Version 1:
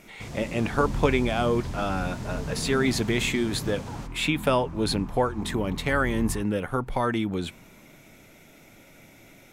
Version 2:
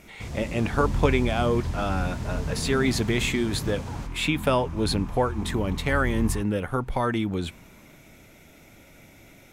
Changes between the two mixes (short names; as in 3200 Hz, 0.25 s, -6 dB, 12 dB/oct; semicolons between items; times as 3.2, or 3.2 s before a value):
second sound: add high shelf 2200 Hz +11 dB; master: add bell 64 Hz +11.5 dB 0.81 oct